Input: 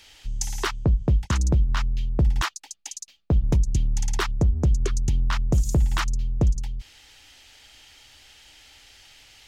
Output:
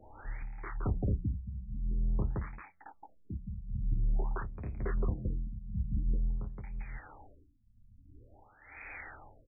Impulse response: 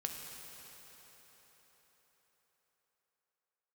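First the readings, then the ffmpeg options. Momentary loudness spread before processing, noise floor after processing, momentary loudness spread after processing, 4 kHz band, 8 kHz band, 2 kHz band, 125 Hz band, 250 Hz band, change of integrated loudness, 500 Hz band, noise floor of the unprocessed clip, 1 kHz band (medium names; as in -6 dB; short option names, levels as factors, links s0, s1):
14 LU, -63 dBFS, 15 LU, under -40 dB, under -40 dB, -13.5 dB, -12.5 dB, -11.0 dB, -13.0 dB, -11.5 dB, -57 dBFS, -13.5 dB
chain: -filter_complex "[0:a]tiltshelf=f=920:g=-6,acrossover=split=200|2300[s0][s1][s2];[s0]acompressor=threshold=0.0282:ratio=4[s3];[s1]acompressor=threshold=0.0178:ratio=4[s4];[s2]acompressor=threshold=0.0158:ratio=4[s5];[s3][s4][s5]amix=inputs=3:normalize=0,highshelf=f=3200:g=-8,bandreject=f=89.21:t=h:w=4,bandreject=f=178.42:t=h:w=4,acompressor=mode=upward:threshold=0.0224:ratio=2.5,aeval=exprs='0.0447*(abs(mod(val(0)/0.0447+3,4)-2)-1)':c=same,tremolo=f=1:d=0.84,flanger=delay=9.2:depth=1.2:regen=-40:speed=1.3:shape=triangular,asplit=2[s6][s7];[s7]aecho=0:1:29.15|169.1:0.631|1[s8];[s6][s8]amix=inputs=2:normalize=0,afftfilt=real='re*lt(b*sr/1024,220*pow(2600/220,0.5+0.5*sin(2*PI*0.48*pts/sr)))':imag='im*lt(b*sr/1024,220*pow(2600/220,0.5+0.5*sin(2*PI*0.48*pts/sr)))':win_size=1024:overlap=0.75,volume=1.88"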